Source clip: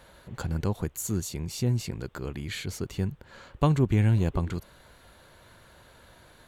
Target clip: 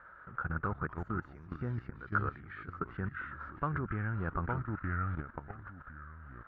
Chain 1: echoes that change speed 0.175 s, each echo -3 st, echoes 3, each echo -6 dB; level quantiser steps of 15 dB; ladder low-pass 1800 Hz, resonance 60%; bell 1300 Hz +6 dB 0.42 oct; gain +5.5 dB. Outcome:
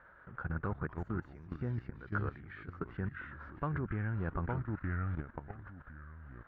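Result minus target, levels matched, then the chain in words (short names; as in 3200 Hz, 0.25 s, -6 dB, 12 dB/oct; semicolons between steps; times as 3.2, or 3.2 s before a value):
1000 Hz band -4.0 dB
echoes that change speed 0.175 s, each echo -3 st, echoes 3, each echo -6 dB; level quantiser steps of 15 dB; ladder low-pass 1800 Hz, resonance 60%; bell 1300 Hz +15 dB 0.42 oct; gain +5.5 dB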